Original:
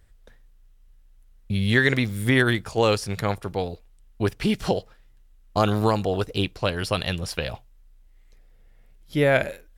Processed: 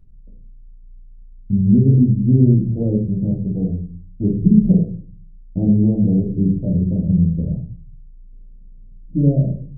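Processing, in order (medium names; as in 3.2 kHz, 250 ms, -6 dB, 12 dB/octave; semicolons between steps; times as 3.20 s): Gaussian low-pass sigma 24 samples; peaking EQ 170 Hz +11 dB 0.82 oct; simulated room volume 300 m³, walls furnished, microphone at 2.5 m; trim +2 dB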